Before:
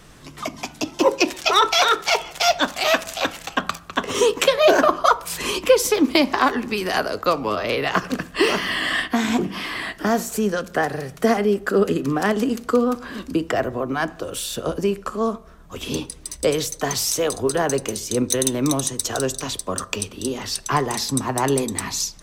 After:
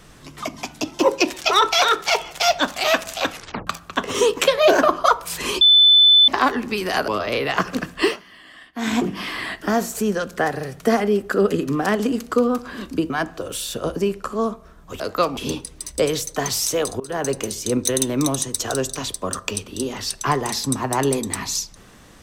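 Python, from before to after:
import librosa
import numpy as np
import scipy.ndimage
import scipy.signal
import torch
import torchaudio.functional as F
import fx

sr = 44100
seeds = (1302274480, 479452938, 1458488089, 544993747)

y = fx.edit(x, sr, fx.tape_stop(start_s=3.32, length_s=0.35),
    fx.bleep(start_s=5.61, length_s=0.67, hz=3510.0, db=-8.5),
    fx.move(start_s=7.08, length_s=0.37, to_s=15.82),
    fx.fade_down_up(start_s=8.42, length_s=0.82, db=-22.0, fade_s=0.12),
    fx.cut(start_s=13.47, length_s=0.45),
    fx.fade_in_from(start_s=17.45, length_s=0.43, curve='qsin', floor_db=-22.5), tone=tone)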